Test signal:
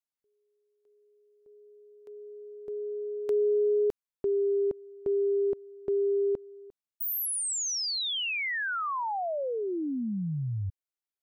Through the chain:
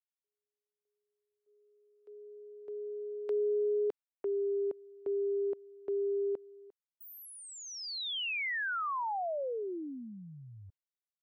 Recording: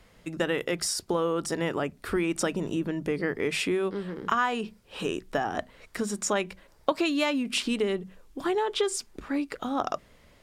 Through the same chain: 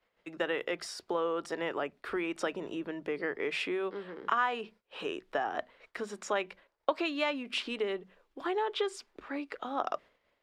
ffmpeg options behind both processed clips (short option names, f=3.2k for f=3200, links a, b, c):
-filter_complex "[0:a]agate=range=-17dB:threshold=-49dB:ratio=3:release=165:detection=peak,acrossover=split=330 4200:gain=0.158 1 0.158[a][b][c];[a][b][c]amix=inputs=3:normalize=0,volume=-3dB"